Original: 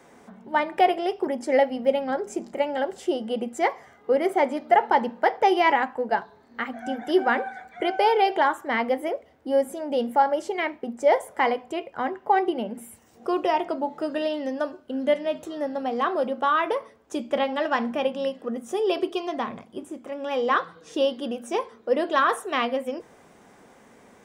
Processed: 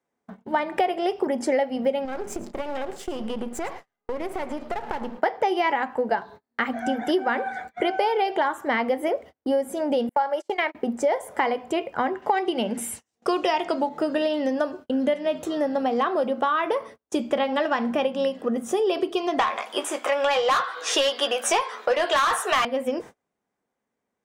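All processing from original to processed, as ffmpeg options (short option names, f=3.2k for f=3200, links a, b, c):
-filter_complex "[0:a]asettb=1/sr,asplit=3[a][b][c];[a]atrim=end=2.054[d];[b]atrim=start=2.05:end=5.18,asetpts=PTS-STARTPTS,afade=t=in:d=0.004:c=qsin,afade=t=out:st=3.126:d=0.004:c=qsin,aeval=exprs='if(lt(val(0),0),0.251*val(0),val(0))':c=same,acompressor=threshold=-32dB:ratio=6:attack=3.2:release=140:knee=1:detection=peak,aecho=1:1:110:0.15,atrim=end_sample=138033[e];[c]atrim=start=5.176[f];[d][e]acrossfade=d=0.004:c1=hsin:c2=qsin[g];[g][f]acrossfade=d=0.004:c1=qsin:c2=hsin,asettb=1/sr,asplit=3[h][i][j];[h]atrim=end=10.094[k];[i]atrim=start=10.09:end=10.75,asetpts=PTS-STARTPTS,afade=t=in:d=0.004:c=qsin,afade=t=out:st=0.656:d=0.004:c=qsin,highpass=470,agate=range=-35dB:threshold=-34dB:ratio=16:release=100:detection=peak[l];[j]atrim=start=10.746[m];[k][l]acrossfade=d=0.004:c1=hsin:c2=qsin[n];[n][m]acrossfade=d=0.004:c1=qsin:c2=hsin,asettb=1/sr,asplit=3[o][p][q];[o]atrim=end=12.224[r];[p]atrim=start=12.22:end=13.89,asetpts=PTS-STARTPTS,afade=t=in:d=0.004:c=qsin,afade=t=out:st=1.666:d=0.004:c=qsin,lowpass=8.7k,highshelf=f=2k:g=11.5[s];[q]atrim=start=13.886[t];[r][s]acrossfade=d=0.004:c1=hsin:c2=qsin[u];[u][t]acrossfade=d=0.004:c1=qsin:c2=hsin,asettb=1/sr,asplit=3[v][w][x];[v]atrim=end=19.394[y];[w]atrim=start=19.39:end=22.65,asetpts=PTS-STARTPTS,afade=t=in:d=0.004:c=qsin,afade=t=out:st=3.256:d=0.004:c=qsin,highpass=700,asplit=2[z][aa];[aa]highpass=f=720:p=1,volume=22dB,asoftclip=type=tanh:threshold=-9dB[ab];[z][ab]amix=inputs=2:normalize=0,lowpass=f=6.1k:p=1,volume=-6dB,asplit=2[ac][ad];[ad]adelay=14,volume=-8dB[ae];[ac][ae]amix=inputs=2:normalize=0,atrim=end_sample=143766[af];[x]atrim=start=22.646[ag];[y][af]acrossfade=d=0.004:c1=hsin:c2=qsin[ah];[ah][ag]acrossfade=d=0.004:c1=qsin:c2=hsin,agate=range=-36dB:threshold=-44dB:ratio=16:detection=peak,acompressor=threshold=-27dB:ratio=6,volume=7dB"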